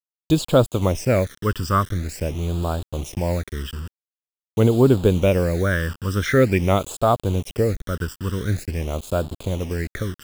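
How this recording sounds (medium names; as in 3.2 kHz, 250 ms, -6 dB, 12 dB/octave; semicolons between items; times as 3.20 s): a quantiser's noise floor 6-bit, dither none; phasing stages 12, 0.46 Hz, lowest notch 700–2000 Hz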